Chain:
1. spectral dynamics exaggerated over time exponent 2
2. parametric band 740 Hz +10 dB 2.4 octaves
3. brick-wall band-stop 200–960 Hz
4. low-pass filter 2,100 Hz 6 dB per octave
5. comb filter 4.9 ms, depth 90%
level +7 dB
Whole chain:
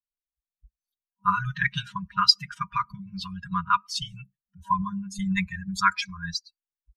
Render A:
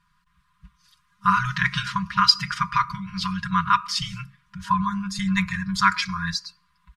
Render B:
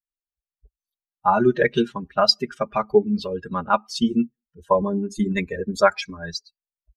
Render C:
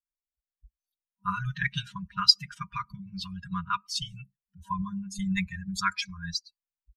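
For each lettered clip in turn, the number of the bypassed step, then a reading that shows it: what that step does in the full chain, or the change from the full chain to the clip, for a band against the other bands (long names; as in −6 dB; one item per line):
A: 1, change in crest factor −3.0 dB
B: 3, 250 Hz band +9.5 dB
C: 2, 1 kHz band −6.0 dB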